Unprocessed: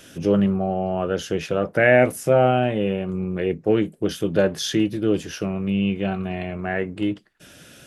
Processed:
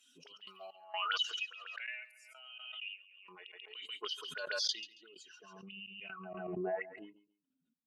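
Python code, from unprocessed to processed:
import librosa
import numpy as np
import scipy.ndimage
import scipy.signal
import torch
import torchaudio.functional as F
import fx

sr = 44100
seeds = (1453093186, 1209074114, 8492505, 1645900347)

p1 = fx.bin_expand(x, sr, power=2.0)
p2 = fx.low_shelf(p1, sr, hz=130.0, db=-11.5)
p3 = p2 + 0.76 * np.pad(p2, (int(4.7 * sr / 1000.0), 0))[:len(p2)]
p4 = fx.auto_wah(p3, sr, base_hz=240.0, top_hz=4700.0, q=8.2, full_db=-24.5, direction='up')
p5 = fx.step_gate(p4, sr, bpm=64, pattern='x.x.xxx.x.x.', floor_db=-24.0, edge_ms=4.5)
p6 = fx.filter_sweep_highpass(p5, sr, from_hz=2800.0, to_hz=96.0, start_s=3.46, end_s=5.83, q=0.9)
p7 = p6 + fx.echo_feedback(p6, sr, ms=138, feedback_pct=21, wet_db=-16.5, dry=0)
p8 = fx.pre_swell(p7, sr, db_per_s=28.0)
y = p8 * librosa.db_to_amplitude(8.5)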